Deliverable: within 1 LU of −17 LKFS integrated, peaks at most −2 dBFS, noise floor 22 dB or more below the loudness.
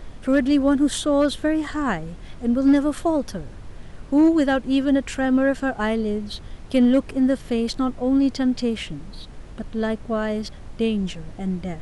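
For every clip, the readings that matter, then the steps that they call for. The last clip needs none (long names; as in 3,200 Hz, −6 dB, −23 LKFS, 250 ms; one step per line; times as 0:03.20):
share of clipped samples 0.3%; peaks flattened at −10.5 dBFS; background noise floor −40 dBFS; target noise floor −44 dBFS; integrated loudness −22.0 LKFS; sample peak −10.5 dBFS; target loudness −17.0 LKFS
→ clipped peaks rebuilt −10.5 dBFS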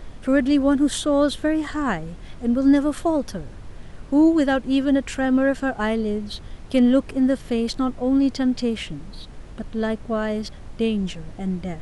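share of clipped samples 0.0%; background noise floor −40 dBFS; target noise floor −44 dBFS
→ noise reduction from a noise print 6 dB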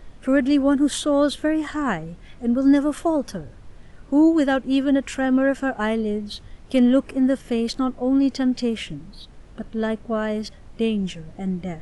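background noise floor −45 dBFS; integrated loudness −21.5 LKFS; sample peak −8.0 dBFS; target loudness −17.0 LKFS
→ level +4.5 dB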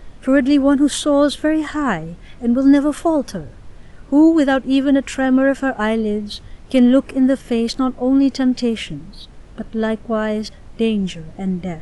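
integrated loudness −17.0 LKFS; sample peak −3.5 dBFS; background noise floor −41 dBFS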